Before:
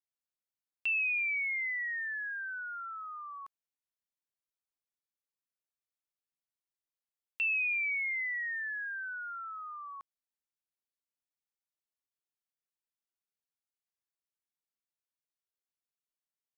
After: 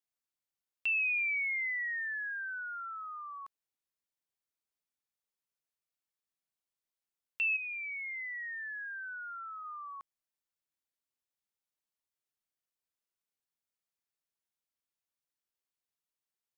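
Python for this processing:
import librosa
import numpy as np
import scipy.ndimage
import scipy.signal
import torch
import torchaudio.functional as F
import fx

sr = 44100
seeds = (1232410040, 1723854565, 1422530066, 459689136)

y = fx.lowpass(x, sr, hz=1600.0, slope=12, at=(7.56, 9.63), fade=0.02)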